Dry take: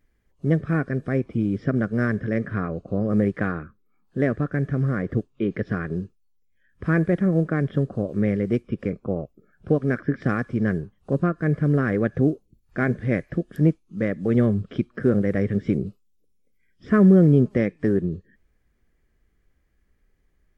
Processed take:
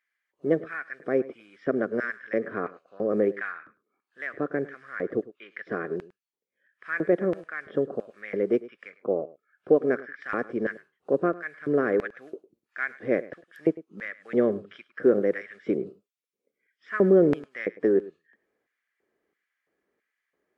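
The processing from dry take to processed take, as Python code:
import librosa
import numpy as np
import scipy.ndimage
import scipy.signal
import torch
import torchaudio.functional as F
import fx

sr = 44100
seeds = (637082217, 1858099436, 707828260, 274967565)

p1 = fx.high_shelf(x, sr, hz=2800.0, db=-11.0)
p2 = fx.filter_lfo_highpass(p1, sr, shape='square', hz=1.5, low_hz=410.0, high_hz=1800.0, q=1.5)
y = p2 + fx.echo_single(p2, sr, ms=104, db=-19.0, dry=0)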